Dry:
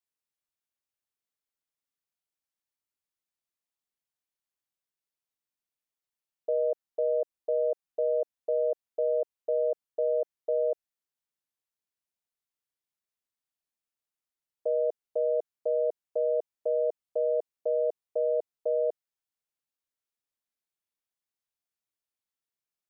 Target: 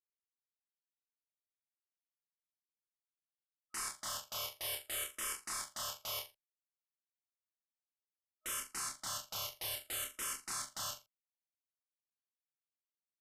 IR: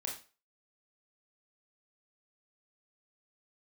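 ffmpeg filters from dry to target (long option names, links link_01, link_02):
-filter_complex "[0:a]equalizer=frequency=470:width_type=o:width=2.1:gain=-10,agate=range=-33dB:threshold=-34dB:ratio=3:detection=peak,afftfilt=real='re*between(b*sr/4096,360,740)':imag='im*between(b*sr/4096,360,740)':win_size=4096:overlap=0.75,aresample=16000,aeval=exprs='(mod(224*val(0)+1,2)-1)/224':channel_layout=same,aresample=44100,asplit=2[link_01][link_02];[link_02]adelay=47,volume=-3dB[link_03];[link_01][link_03]amix=inputs=2:normalize=0,aecho=1:1:73|146|219:0.355|0.103|0.0298,asetrate=76440,aresample=44100,asplit=2[link_04][link_05];[link_05]afreqshift=-0.6[link_06];[link_04][link_06]amix=inputs=2:normalize=1,volume=13.5dB"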